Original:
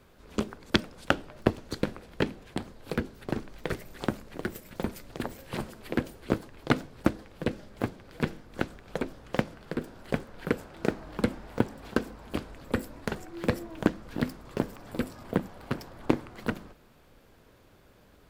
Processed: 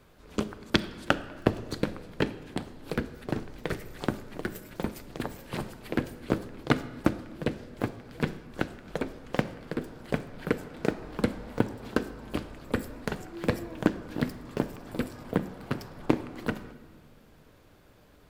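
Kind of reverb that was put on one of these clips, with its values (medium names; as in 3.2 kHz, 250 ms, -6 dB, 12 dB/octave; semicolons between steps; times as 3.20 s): simulated room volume 1600 m³, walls mixed, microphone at 0.43 m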